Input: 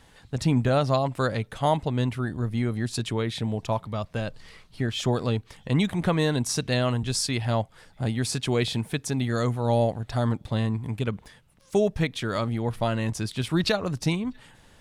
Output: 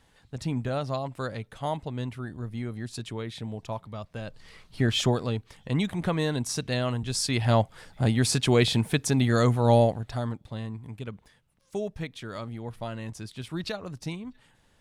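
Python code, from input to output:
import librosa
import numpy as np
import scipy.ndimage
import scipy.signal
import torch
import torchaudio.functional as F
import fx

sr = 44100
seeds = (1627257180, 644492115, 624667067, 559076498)

y = fx.gain(x, sr, db=fx.line((4.19, -7.5), (4.96, 5.0), (5.22, -3.5), (7.08, -3.5), (7.51, 3.5), (9.75, 3.5), (10.42, -9.5)))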